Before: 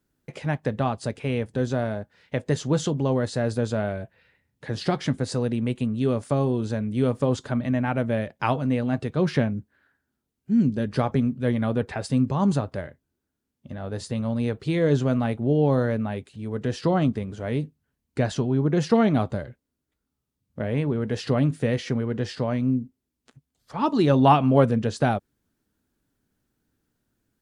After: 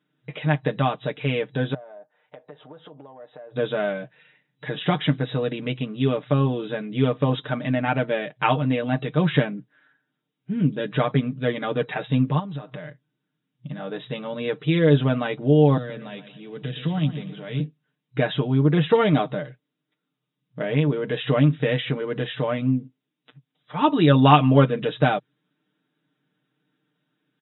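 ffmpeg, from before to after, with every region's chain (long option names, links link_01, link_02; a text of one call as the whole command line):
ffmpeg -i in.wav -filter_complex "[0:a]asettb=1/sr,asplit=3[link_01][link_02][link_03];[link_01]atrim=end=1.744[link_04];[link_02]atrim=start=1.74:end=3.56,asetpts=PTS-STARTPTS,afade=type=in:duration=0.004:curve=qsin,afade=type=out:start_time=1.816:duration=0.004:curve=qsin,bandpass=frequency=730:width_type=q:width=2.2,acompressor=threshold=-42dB:ratio=8:attack=3.2:release=140:knee=1:detection=peak[link_05];[link_03]atrim=start=3.556[link_06];[link_04][link_05]acrossfade=duration=0.004:curve1=hsin:curve2=qsin[link_07];[link_07][link_06]acrossfade=duration=0.004:curve1=qsin:curve2=hsin,asettb=1/sr,asplit=3[link_08][link_09][link_10];[link_08]atrim=end=12.394[link_11];[link_09]atrim=start=12.39:end=13.79,asetpts=PTS-STARTPTS,afade=type=in:duration=0.004:curve=qsin,afade=type=out:start_time=1.396:duration=0.004:curve=qsin,acompressor=threshold=-32dB:ratio=12:attack=3.2:release=140:knee=1:detection=peak,asubboost=boost=9:cutoff=190[link_12];[link_10]atrim=start=13.786[link_13];[link_11][link_12]acrossfade=duration=0.004:curve1=hsin:curve2=qsin[link_14];[link_14][link_13]acrossfade=duration=0.004:curve1=qsin:curve2=hsin,asettb=1/sr,asplit=3[link_15][link_16][link_17];[link_15]atrim=end=15.774[link_18];[link_16]atrim=start=15.77:end=17.6,asetpts=PTS-STARTPTS,afade=type=in:duration=0.004:curve=qsin,afade=type=out:start_time=1.826:duration=0.004:curve=qsin,acrossover=split=190|3000[link_19][link_20][link_21];[link_20]acompressor=threshold=-45dB:ratio=2:attack=3.2:release=140:knee=2.83:detection=peak[link_22];[link_19][link_22][link_21]amix=inputs=3:normalize=0,aecho=1:1:119|238|357|476:0.251|0.108|0.0464|0.02,atrim=end_sample=80703[link_23];[link_17]atrim=start=17.596[link_24];[link_18][link_23]acrossfade=duration=0.004:curve1=hsin:curve2=qsin[link_25];[link_25][link_24]acrossfade=duration=0.004:curve1=qsin:curve2=hsin,afftfilt=real='re*between(b*sr/4096,120,3900)':imag='im*between(b*sr/4096,120,3900)':win_size=4096:overlap=0.75,highshelf=frequency=2500:gain=10.5,aecho=1:1:6.6:0.76" out.wav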